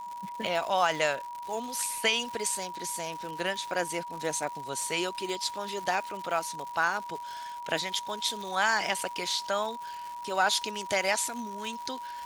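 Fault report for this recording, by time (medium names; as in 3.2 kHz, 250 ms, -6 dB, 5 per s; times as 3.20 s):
crackle 210 per s -36 dBFS
whine 960 Hz -37 dBFS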